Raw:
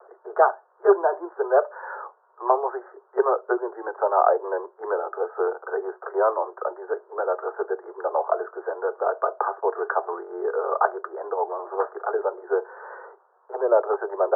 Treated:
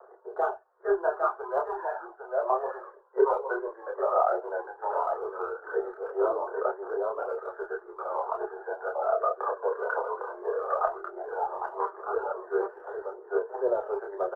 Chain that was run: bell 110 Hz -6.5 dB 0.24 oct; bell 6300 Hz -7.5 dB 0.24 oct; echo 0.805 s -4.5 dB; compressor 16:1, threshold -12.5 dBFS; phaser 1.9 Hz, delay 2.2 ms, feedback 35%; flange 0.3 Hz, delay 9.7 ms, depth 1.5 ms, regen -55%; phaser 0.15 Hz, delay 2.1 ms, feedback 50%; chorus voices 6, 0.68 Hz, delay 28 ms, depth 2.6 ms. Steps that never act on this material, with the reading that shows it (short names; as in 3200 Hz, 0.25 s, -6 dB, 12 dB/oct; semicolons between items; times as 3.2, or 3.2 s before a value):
bell 110 Hz: input band starts at 320 Hz; bell 6300 Hz: input band ends at 1700 Hz